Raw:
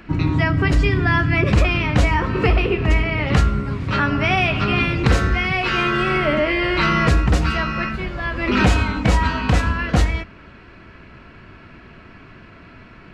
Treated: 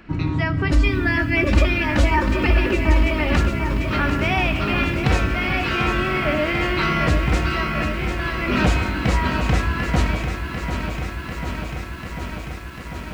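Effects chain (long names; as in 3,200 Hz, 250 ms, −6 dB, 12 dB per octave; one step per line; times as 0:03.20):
0:00.71–0:03.37: comb filter 3.4 ms, depth 91%
feedback echo at a low word length 744 ms, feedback 80%, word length 7 bits, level −8 dB
level −3.5 dB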